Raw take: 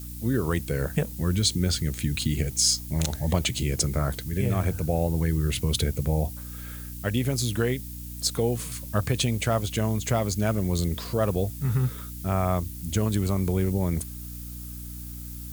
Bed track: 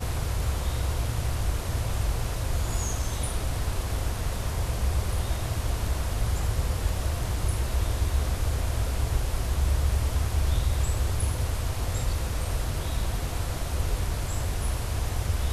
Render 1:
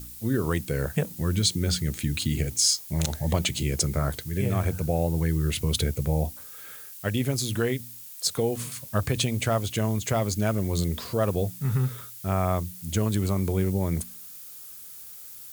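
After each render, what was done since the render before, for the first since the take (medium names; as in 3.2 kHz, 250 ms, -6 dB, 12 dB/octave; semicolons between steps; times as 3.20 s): de-hum 60 Hz, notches 5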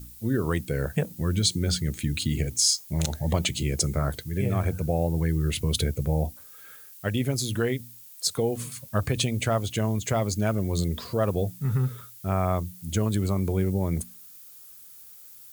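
noise reduction 6 dB, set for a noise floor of -43 dBFS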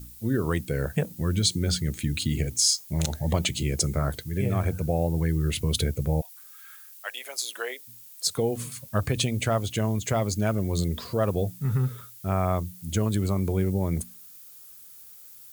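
6.20–7.87 s: high-pass 1.2 kHz -> 490 Hz 24 dB/octave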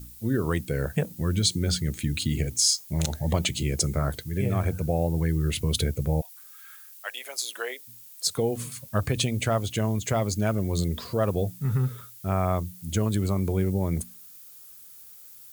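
no audible change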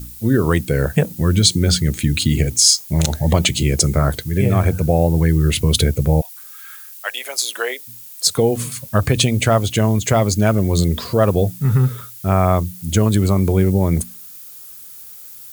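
trim +10 dB; peak limiter -1 dBFS, peak gain reduction 2 dB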